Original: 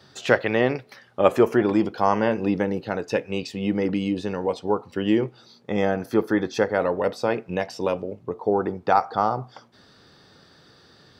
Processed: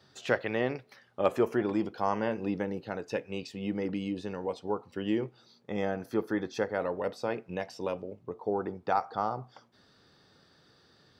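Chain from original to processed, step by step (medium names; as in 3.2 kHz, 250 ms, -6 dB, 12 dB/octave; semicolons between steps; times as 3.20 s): trim -9 dB; AAC 192 kbps 48 kHz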